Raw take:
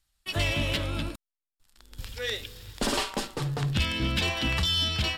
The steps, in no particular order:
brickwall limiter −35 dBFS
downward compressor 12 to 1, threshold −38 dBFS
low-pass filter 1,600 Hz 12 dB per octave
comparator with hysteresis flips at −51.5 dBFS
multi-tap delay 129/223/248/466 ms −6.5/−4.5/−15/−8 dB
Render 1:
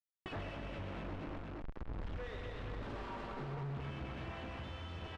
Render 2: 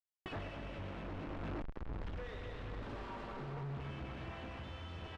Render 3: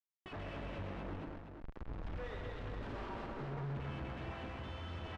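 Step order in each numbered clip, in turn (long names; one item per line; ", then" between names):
comparator with hysteresis, then brickwall limiter, then multi-tap delay, then downward compressor, then low-pass filter
comparator with hysteresis, then multi-tap delay, then brickwall limiter, then downward compressor, then low-pass filter
downward compressor, then comparator with hysteresis, then multi-tap delay, then brickwall limiter, then low-pass filter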